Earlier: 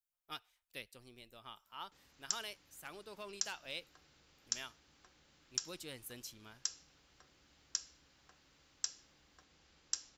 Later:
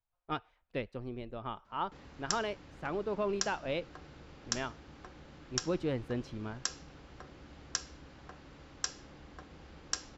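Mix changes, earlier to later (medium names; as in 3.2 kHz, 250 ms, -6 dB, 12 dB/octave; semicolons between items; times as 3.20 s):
speech: add tape spacing loss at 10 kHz 22 dB; master: remove pre-emphasis filter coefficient 0.9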